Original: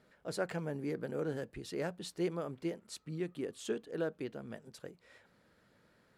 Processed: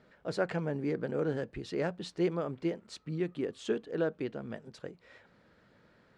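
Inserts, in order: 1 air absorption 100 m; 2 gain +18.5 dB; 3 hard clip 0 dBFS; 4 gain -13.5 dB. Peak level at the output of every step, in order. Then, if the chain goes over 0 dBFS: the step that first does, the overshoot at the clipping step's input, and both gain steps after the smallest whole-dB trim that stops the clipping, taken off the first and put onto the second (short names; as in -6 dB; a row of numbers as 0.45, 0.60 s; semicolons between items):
-23.0, -4.5, -4.5, -18.0 dBFS; no overload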